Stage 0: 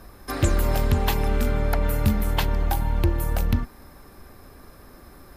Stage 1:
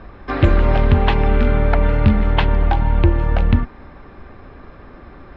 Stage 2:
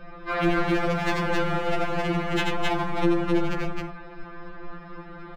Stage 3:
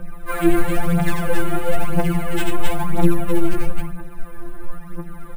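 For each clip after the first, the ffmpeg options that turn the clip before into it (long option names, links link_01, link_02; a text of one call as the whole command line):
ffmpeg -i in.wav -af "lowpass=frequency=3200:width=0.5412,lowpass=frequency=3200:width=1.3066,volume=7.5dB" out.wav
ffmpeg -i in.wav -filter_complex "[0:a]asoftclip=type=hard:threshold=-14.5dB,asplit=2[link_01][link_02];[link_02]aecho=0:1:87.46|265.3:0.631|0.794[link_03];[link_01][link_03]amix=inputs=2:normalize=0,afftfilt=real='re*2.83*eq(mod(b,8),0)':imag='im*2.83*eq(mod(b,8),0)':win_size=2048:overlap=0.75" out.wav
ffmpeg -i in.wav -af "lowshelf=frequency=260:gain=10.5,acrusher=samples=4:mix=1:aa=0.000001,aphaser=in_gain=1:out_gain=1:delay=3.2:decay=0.6:speed=1:type=triangular,volume=-2.5dB" out.wav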